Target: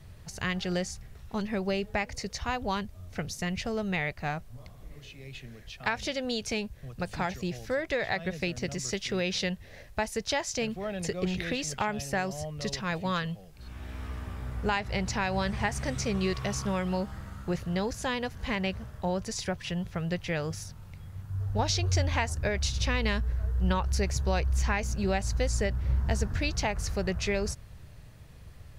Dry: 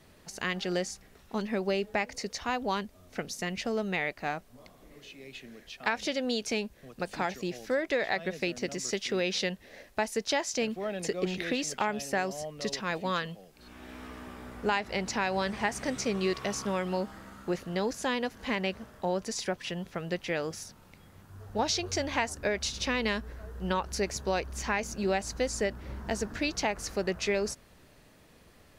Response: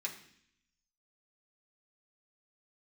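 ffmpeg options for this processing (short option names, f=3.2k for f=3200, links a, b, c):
-af "lowshelf=f=170:t=q:w=1.5:g=13"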